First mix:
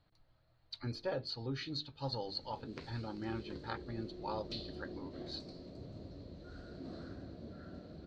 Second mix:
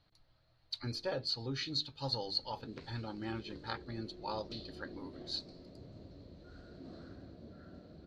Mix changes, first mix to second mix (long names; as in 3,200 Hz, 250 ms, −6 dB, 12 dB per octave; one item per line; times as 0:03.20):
speech: remove low-pass filter 2,300 Hz 6 dB per octave
background −3.5 dB